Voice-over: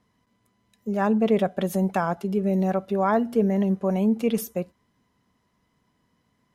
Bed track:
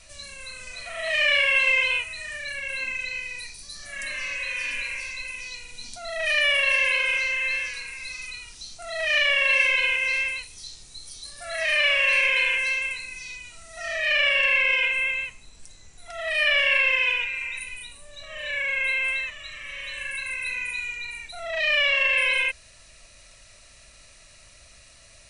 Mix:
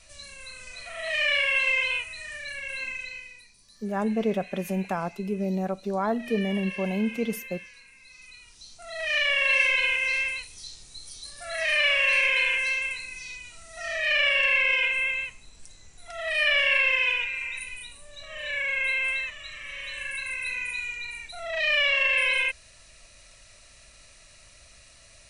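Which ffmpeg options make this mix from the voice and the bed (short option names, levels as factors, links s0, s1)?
-filter_complex "[0:a]adelay=2950,volume=0.562[s0];[1:a]volume=3.76,afade=t=out:st=2.87:d=0.57:silence=0.223872,afade=t=in:st=8.06:d=1.49:silence=0.177828[s1];[s0][s1]amix=inputs=2:normalize=0"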